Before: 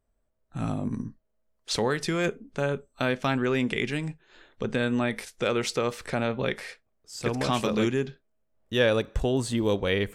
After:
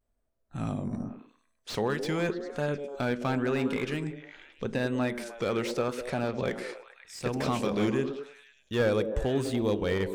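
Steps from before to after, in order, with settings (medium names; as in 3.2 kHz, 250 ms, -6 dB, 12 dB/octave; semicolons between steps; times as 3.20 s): repeats whose band climbs or falls 102 ms, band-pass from 280 Hz, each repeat 0.7 oct, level -4.5 dB; vibrato 0.87 Hz 71 cents; slew-rate limiter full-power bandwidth 97 Hz; trim -3 dB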